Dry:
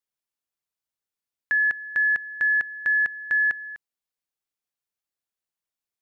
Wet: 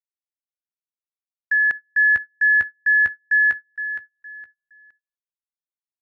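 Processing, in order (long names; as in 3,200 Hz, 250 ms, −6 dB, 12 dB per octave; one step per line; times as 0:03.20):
noise gate −28 dBFS, range −35 dB
0:01.75–0:03.39: parametric band 79 Hz +14 dB 2 octaves
repeating echo 465 ms, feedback 27%, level −10.5 dB
level +3.5 dB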